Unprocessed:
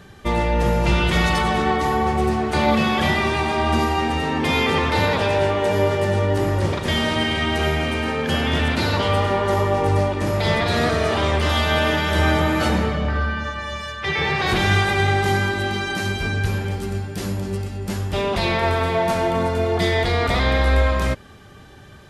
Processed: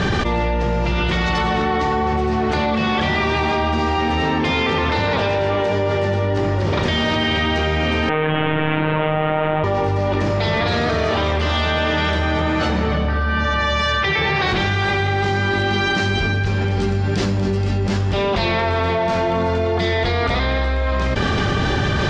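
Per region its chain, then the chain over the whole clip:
8.09–9.64 delta modulation 16 kbps, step -26 dBFS + robotiser 155 Hz
whole clip: LPF 5900 Hz 24 dB/oct; fast leveller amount 100%; gain -4.5 dB

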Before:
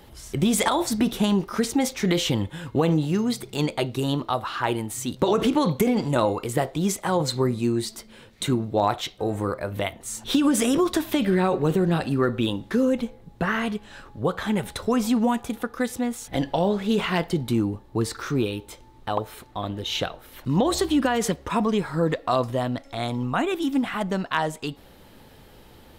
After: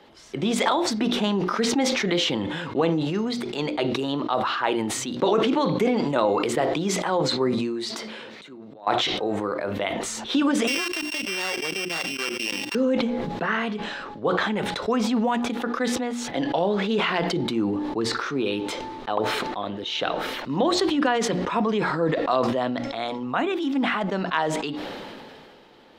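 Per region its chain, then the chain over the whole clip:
7.58–8.87 HPF 180 Hz 6 dB/oct + compressor, threshold -37 dBFS + auto swell 0.11 s
10.67–12.75 sample sorter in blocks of 16 samples + tilt +4.5 dB/oct + level quantiser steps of 23 dB
whole clip: three-band isolator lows -20 dB, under 190 Hz, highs -22 dB, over 5600 Hz; notches 60/120/180/240/300/360 Hz; sustainer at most 24 dB/s

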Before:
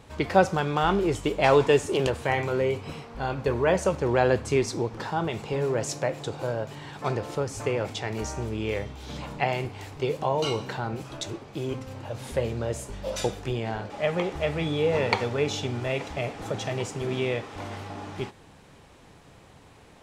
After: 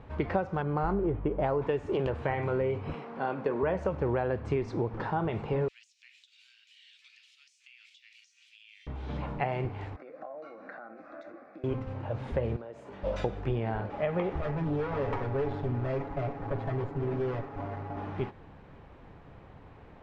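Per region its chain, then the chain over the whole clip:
0.62–1.62 air absorption 500 m + decimation joined by straight lines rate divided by 8×
2.94–3.63 HPF 180 Hz 24 dB/oct + upward compressor, threshold -36 dBFS
5.68–8.87 steep high-pass 2600 Hz + high shelf 3600 Hz +9.5 dB + compressor 16:1, threshold -42 dBFS
9.96–11.64 compressor 12:1, threshold -33 dBFS + BPF 390–3700 Hz + fixed phaser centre 620 Hz, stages 8
12.56–13.03 HPF 240 Hz + compressor, threshold -40 dBFS
14.41–17.97 median filter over 15 samples + tube stage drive 29 dB, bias 0.55 + comb 7.2 ms, depth 74%
whole clip: compressor 12:1, threshold -25 dBFS; LPF 1900 Hz 12 dB/oct; low shelf 65 Hz +8.5 dB

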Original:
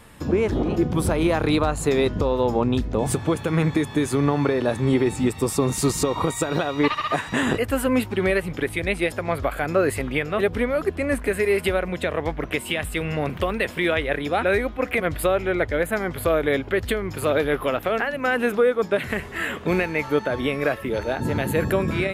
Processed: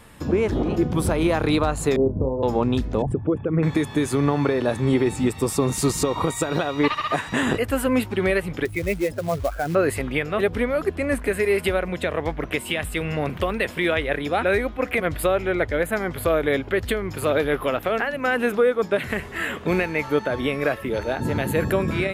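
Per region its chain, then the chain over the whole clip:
1.96–2.43 Bessel low-pass 530 Hz, order 8 + doubler 30 ms -7 dB
3.02–3.63 formant sharpening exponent 2 + polynomial smoothing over 25 samples
8.65–9.75 spectral contrast raised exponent 1.9 + dynamic EQ 170 Hz, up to +4 dB, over -42 dBFS, Q 6 + short-mantissa float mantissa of 2-bit
whole clip: dry

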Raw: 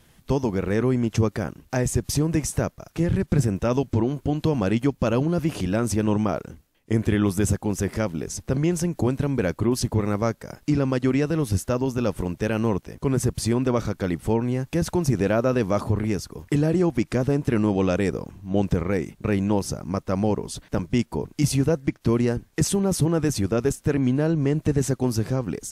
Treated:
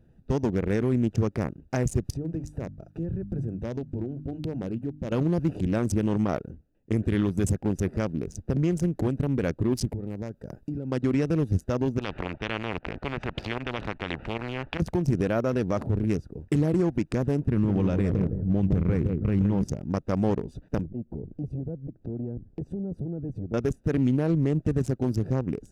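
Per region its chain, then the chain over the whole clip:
2.1–5.12 notches 50/100/150/200/250/300 Hz + compressor 2:1, threshold -32 dBFS
9.9–10.92 high shelf 9300 Hz +11 dB + compressor 8:1, threshold -27 dBFS
11.99–14.8 LPF 2600 Hz 24 dB/oct + pump 151 bpm, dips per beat 1, -10 dB, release 82 ms + spectral compressor 4:1
17.45–19.64 tone controls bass +10 dB, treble -7 dB + analogue delay 0.162 s, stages 2048, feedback 31%, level -8 dB
20.85–23.54 tilt shelf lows +9 dB, about 840 Hz + compressor 4:1, threshold -30 dBFS + core saturation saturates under 270 Hz
whole clip: Wiener smoothing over 41 samples; limiter -15 dBFS

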